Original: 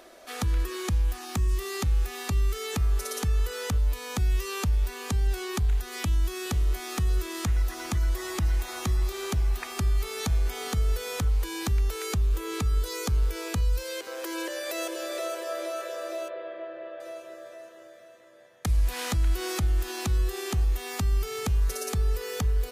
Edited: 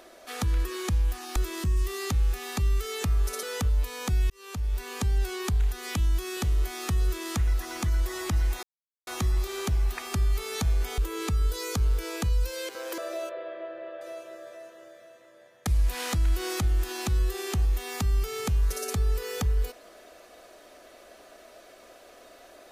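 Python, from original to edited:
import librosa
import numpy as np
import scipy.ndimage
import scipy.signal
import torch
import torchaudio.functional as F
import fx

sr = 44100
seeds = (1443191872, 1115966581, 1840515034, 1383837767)

y = fx.edit(x, sr, fx.cut(start_s=3.15, length_s=0.37),
    fx.fade_in_span(start_s=4.39, length_s=0.6),
    fx.duplicate(start_s=7.13, length_s=0.28, to_s=1.36),
    fx.insert_silence(at_s=8.72, length_s=0.44),
    fx.cut(start_s=10.63, length_s=1.67),
    fx.cut(start_s=14.3, length_s=1.67), tone=tone)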